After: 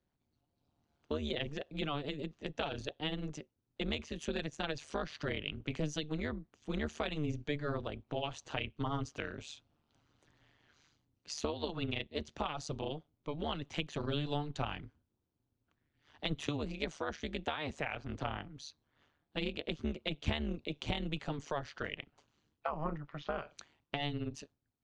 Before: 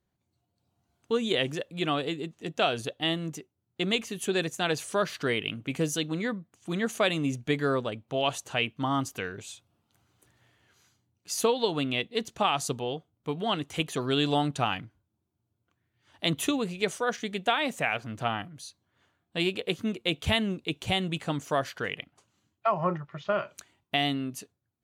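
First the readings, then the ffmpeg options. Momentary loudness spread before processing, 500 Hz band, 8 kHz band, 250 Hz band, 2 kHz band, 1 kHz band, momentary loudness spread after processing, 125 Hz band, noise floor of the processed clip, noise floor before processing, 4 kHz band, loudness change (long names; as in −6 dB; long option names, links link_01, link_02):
10 LU, −10.0 dB, −13.5 dB, −8.5 dB, −10.0 dB, −11.0 dB, 8 LU, −5.5 dB, −83 dBFS, −80 dBFS, −10.5 dB, −9.5 dB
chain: -filter_complex "[0:a]tremolo=f=150:d=0.974,acrossover=split=150[link_01][link_02];[link_02]acompressor=threshold=-37dB:ratio=3[link_03];[link_01][link_03]amix=inputs=2:normalize=0,lowpass=frequency=5900:width=0.5412,lowpass=frequency=5900:width=1.3066,volume=1dB"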